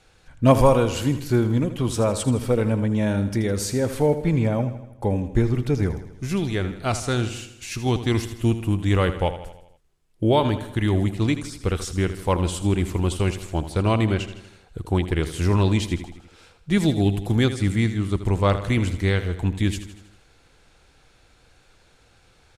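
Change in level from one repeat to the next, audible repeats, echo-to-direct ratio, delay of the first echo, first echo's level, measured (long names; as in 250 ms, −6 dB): −5.0 dB, 5, −10.5 dB, 80 ms, −12.0 dB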